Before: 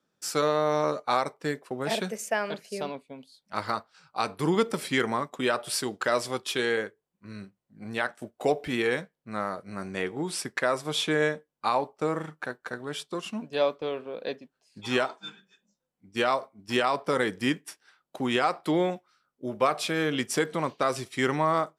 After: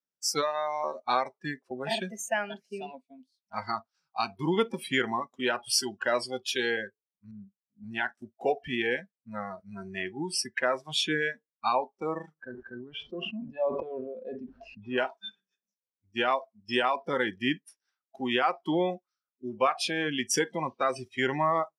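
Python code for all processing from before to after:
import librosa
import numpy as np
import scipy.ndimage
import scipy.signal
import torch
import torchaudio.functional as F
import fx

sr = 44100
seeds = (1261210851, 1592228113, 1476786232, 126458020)

y = fx.chain(x, sr, fx.bandpass_q(hz=250.0, q=0.69),
    fx.air_absorb(metres=230.0), at=(7.31, 7.84))
y = fx.chain(y, sr, fx.spacing_loss(db_at_10k=42),
    fx.sustainer(db_per_s=25.0), at=(12.34, 14.98))
y = fx.peak_eq(y, sr, hz=5600.0, db=9.5, octaves=0.42)
y = fx.noise_reduce_blind(y, sr, reduce_db=23)
y = fx.low_shelf(y, sr, hz=330.0, db=-4.0)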